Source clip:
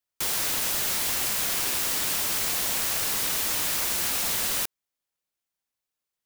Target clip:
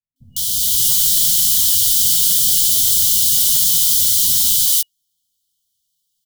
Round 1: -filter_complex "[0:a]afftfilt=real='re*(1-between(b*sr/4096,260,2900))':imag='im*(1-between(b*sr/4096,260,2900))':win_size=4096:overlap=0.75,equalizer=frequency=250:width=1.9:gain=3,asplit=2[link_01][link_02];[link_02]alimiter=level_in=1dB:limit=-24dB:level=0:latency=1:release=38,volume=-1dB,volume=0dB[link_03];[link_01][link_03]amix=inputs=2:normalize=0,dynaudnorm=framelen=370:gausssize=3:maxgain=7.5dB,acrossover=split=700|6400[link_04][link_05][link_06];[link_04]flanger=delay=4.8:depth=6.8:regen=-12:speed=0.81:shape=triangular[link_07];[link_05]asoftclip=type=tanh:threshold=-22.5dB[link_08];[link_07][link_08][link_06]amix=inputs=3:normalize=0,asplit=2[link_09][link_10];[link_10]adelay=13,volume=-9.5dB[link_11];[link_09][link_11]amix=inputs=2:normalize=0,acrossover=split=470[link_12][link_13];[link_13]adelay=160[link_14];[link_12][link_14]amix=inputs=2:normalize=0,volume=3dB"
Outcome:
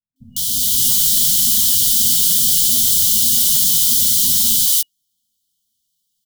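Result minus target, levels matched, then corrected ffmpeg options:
250 Hz band +7.5 dB
-filter_complex "[0:a]afftfilt=real='re*(1-between(b*sr/4096,260,2900))':imag='im*(1-between(b*sr/4096,260,2900))':win_size=4096:overlap=0.75,equalizer=frequency=250:width=1.9:gain=-8.5,asplit=2[link_01][link_02];[link_02]alimiter=level_in=1dB:limit=-24dB:level=0:latency=1:release=38,volume=-1dB,volume=0dB[link_03];[link_01][link_03]amix=inputs=2:normalize=0,dynaudnorm=framelen=370:gausssize=3:maxgain=7.5dB,acrossover=split=700|6400[link_04][link_05][link_06];[link_04]flanger=delay=4.8:depth=6.8:regen=-12:speed=0.81:shape=triangular[link_07];[link_05]asoftclip=type=tanh:threshold=-22.5dB[link_08];[link_07][link_08][link_06]amix=inputs=3:normalize=0,asplit=2[link_09][link_10];[link_10]adelay=13,volume=-9.5dB[link_11];[link_09][link_11]amix=inputs=2:normalize=0,acrossover=split=470[link_12][link_13];[link_13]adelay=160[link_14];[link_12][link_14]amix=inputs=2:normalize=0,volume=3dB"

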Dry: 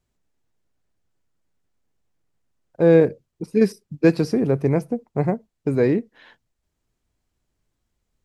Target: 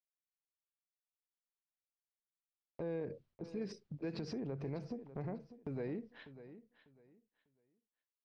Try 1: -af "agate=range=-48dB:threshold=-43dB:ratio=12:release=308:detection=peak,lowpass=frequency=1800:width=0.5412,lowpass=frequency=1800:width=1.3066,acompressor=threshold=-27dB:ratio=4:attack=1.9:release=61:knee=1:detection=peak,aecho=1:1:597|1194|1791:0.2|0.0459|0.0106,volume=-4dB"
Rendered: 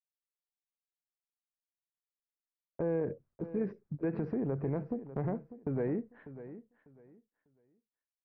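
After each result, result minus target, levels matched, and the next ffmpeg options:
downward compressor: peak gain reduction −8 dB; 2,000 Hz band −4.0 dB
-af "agate=range=-48dB:threshold=-43dB:ratio=12:release=308:detection=peak,lowpass=frequency=1800:width=0.5412,lowpass=frequency=1800:width=1.3066,acompressor=threshold=-37.5dB:ratio=4:attack=1.9:release=61:knee=1:detection=peak,aecho=1:1:597|1194|1791:0.2|0.0459|0.0106,volume=-4dB"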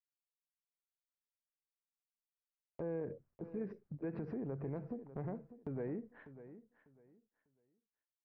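2,000 Hz band −3.0 dB
-af "agate=range=-48dB:threshold=-43dB:ratio=12:release=308:detection=peak,lowpass=frequency=4900:width=0.5412,lowpass=frequency=4900:width=1.3066,acompressor=threshold=-37.5dB:ratio=4:attack=1.9:release=61:knee=1:detection=peak,aecho=1:1:597|1194|1791:0.2|0.0459|0.0106,volume=-4dB"

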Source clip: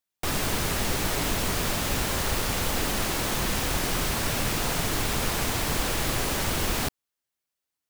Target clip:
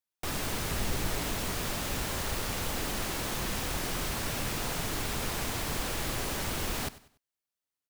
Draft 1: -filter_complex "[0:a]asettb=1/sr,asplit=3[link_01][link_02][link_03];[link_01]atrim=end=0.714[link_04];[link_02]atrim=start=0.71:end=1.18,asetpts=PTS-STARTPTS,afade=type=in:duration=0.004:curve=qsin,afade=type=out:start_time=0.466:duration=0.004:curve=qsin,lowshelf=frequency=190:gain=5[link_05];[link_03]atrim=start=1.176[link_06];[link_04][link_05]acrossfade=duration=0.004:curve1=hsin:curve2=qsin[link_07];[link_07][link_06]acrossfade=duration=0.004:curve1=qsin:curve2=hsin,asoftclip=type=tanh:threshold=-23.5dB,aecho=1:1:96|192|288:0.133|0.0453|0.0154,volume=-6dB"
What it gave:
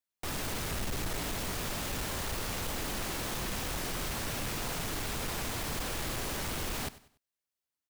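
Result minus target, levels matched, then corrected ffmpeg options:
soft clipping: distortion +16 dB
-filter_complex "[0:a]asettb=1/sr,asplit=3[link_01][link_02][link_03];[link_01]atrim=end=0.714[link_04];[link_02]atrim=start=0.71:end=1.18,asetpts=PTS-STARTPTS,afade=type=in:duration=0.004:curve=qsin,afade=type=out:start_time=0.466:duration=0.004:curve=qsin,lowshelf=frequency=190:gain=5[link_05];[link_03]atrim=start=1.176[link_06];[link_04][link_05]acrossfade=duration=0.004:curve1=hsin:curve2=qsin[link_07];[link_07][link_06]acrossfade=duration=0.004:curve1=qsin:curve2=hsin,asoftclip=type=tanh:threshold=-12dB,aecho=1:1:96|192|288:0.133|0.0453|0.0154,volume=-6dB"

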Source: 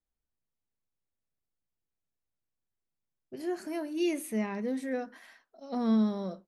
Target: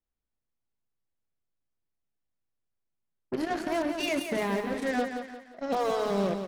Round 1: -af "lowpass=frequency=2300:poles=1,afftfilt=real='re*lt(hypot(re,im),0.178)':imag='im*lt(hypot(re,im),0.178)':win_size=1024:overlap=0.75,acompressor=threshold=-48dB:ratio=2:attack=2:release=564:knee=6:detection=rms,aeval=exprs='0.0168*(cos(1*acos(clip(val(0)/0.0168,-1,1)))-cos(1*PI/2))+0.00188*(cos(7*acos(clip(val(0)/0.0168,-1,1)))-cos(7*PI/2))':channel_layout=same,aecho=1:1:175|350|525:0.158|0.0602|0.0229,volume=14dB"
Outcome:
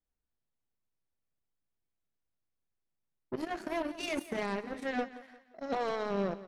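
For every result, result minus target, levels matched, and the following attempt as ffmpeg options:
echo-to-direct −8.5 dB; downward compressor: peak gain reduction +4.5 dB
-af "lowpass=frequency=2300:poles=1,afftfilt=real='re*lt(hypot(re,im),0.178)':imag='im*lt(hypot(re,im),0.178)':win_size=1024:overlap=0.75,acompressor=threshold=-48dB:ratio=2:attack=2:release=564:knee=6:detection=rms,aeval=exprs='0.0168*(cos(1*acos(clip(val(0)/0.0168,-1,1)))-cos(1*PI/2))+0.00188*(cos(7*acos(clip(val(0)/0.0168,-1,1)))-cos(7*PI/2))':channel_layout=same,aecho=1:1:175|350|525|700:0.422|0.16|0.0609|0.0231,volume=14dB"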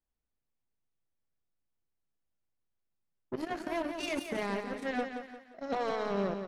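downward compressor: peak gain reduction +4.5 dB
-af "lowpass=frequency=2300:poles=1,afftfilt=real='re*lt(hypot(re,im),0.178)':imag='im*lt(hypot(re,im),0.178)':win_size=1024:overlap=0.75,acompressor=threshold=-39dB:ratio=2:attack=2:release=564:knee=6:detection=rms,aeval=exprs='0.0168*(cos(1*acos(clip(val(0)/0.0168,-1,1)))-cos(1*PI/2))+0.00188*(cos(7*acos(clip(val(0)/0.0168,-1,1)))-cos(7*PI/2))':channel_layout=same,aecho=1:1:175|350|525|700:0.422|0.16|0.0609|0.0231,volume=14dB"

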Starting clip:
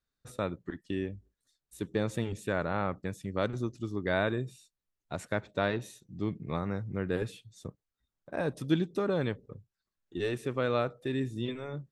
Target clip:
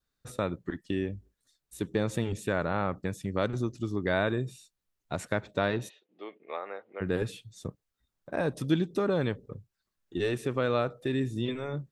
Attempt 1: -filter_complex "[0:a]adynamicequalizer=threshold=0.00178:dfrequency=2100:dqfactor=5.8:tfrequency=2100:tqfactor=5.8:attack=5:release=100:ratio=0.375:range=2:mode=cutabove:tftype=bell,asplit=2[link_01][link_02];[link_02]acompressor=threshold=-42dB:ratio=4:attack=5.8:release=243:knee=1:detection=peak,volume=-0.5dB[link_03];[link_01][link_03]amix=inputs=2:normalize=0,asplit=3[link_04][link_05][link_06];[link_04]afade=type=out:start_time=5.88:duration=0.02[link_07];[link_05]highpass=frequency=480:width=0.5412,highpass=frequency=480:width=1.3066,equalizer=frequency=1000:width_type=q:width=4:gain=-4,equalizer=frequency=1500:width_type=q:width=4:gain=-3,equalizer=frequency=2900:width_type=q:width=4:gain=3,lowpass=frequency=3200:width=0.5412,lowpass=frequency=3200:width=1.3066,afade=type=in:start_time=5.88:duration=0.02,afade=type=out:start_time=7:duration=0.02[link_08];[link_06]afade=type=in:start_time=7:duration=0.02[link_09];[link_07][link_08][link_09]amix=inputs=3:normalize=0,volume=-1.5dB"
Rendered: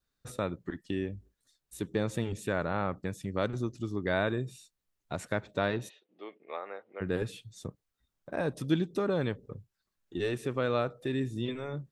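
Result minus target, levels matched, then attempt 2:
downward compressor: peak gain reduction +8 dB
-filter_complex "[0:a]adynamicequalizer=threshold=0.00178:dfrequency=2100:dqfactor=5.8:tfrequency=2100:tqfactor=5.8:attack=5:release=100:ratio=0.375:range=2:mode=cutabove:tftype=bell,asplit=2[link_01][link_02];[link_02]acompressor=threshold=-31dB:ratio=4:attack=5.8:release=243:knee=1:detection=peak,volume=-0.5dB[link_03];[link_01][link_03]amix=inputs=2:normalize=0,asplit=3[link_04][link_05][link_06];[link_04]afade=type=out:start_time=5.88:duration=0.02[link_07];[link_05]highpass=frequency=480:width=0.5412,highpass=frequency=480:width=1.3066,equalizer=frequency=1000:width_type=q:width=4:gain=-4,equalizer=frequency=1500:width_type=q:width=4:gain=-3,equalizer=frequency=2900:width_type=q:width=4:gain=3,lowpass=frequency=3200:width=0.5412,lowpass=frequency=3200:width=1.3066,afade=type=in:start_time=5.88:duration=0.02,afade=type=out:start_time=7:duration=0.02[link_08];[link_06]afade=type=in:start_time=7:duration=0.02[link_09];[link_07][link_08][link_09]amix=inputs=3:normalize=0,volume=-1.5dB"

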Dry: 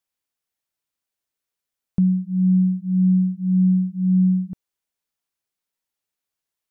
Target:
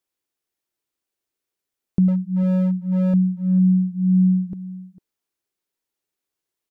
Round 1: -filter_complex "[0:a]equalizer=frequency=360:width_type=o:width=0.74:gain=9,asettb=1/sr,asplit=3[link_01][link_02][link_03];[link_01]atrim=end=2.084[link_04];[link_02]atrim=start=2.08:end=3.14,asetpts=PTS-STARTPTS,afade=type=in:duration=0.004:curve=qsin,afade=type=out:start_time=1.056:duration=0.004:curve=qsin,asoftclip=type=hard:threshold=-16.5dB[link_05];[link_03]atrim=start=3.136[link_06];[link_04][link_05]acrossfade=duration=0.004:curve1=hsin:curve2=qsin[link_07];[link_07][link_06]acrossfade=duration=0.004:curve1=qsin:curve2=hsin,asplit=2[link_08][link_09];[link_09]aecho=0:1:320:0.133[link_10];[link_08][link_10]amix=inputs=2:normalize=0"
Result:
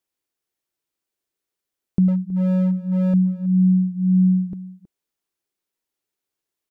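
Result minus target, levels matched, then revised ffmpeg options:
echo 130 ms early
-filter_complex "[0:a]equalizer=frequency=360:width_type=o:width=0.74:gain=9,asettb=1/sr,asplit=3[link_01][link_02][link_03];[link_01]atrim=end=2.084[link_04];[link_02]atrim=start=2.08:end=3.14,asetpts=PTS-STARTPTS,afade=type=in:duration=0.004:curve=qsin,afade=type=out:start_time=1.056:duration=0.004:curve=qsin,asoftclip=type=hard:threshold=-16.5dB[link_05];[link_03]atrim=start=3.136[link_06];[link_04][link_05]acrossfade=duration=0.004:curve1=hsin:curve2=qsin[link_07];[link_07][link_06]acrossfade=duration=0.004:curve1=qsin:curve2=hsin,asplit=2[link_08][link_09];[link_09]aecho=0:1:450:0.133[link_10];[link_08][link_10]amix=inputs=2:normalize=0"

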